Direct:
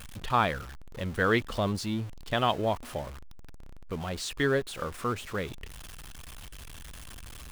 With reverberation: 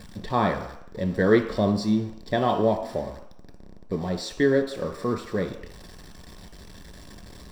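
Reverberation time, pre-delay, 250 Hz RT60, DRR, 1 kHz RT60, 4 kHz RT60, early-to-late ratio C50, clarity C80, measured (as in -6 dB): 0.75 s, 3 ms, 0.55 s, 4.0 dB, 0.80 s, 0.70 s, 8.5 dB, 11.5 dB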